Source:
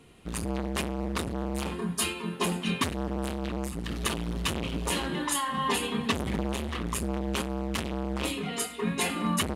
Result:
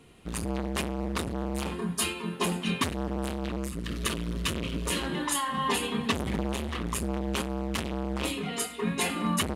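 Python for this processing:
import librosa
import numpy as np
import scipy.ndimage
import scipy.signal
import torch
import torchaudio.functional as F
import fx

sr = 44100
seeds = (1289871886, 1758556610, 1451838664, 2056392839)

y = fx.peak_eq(x, sr, hz=800.0, db=-13.5, octaves=0.32, at=(3.56, 5.02))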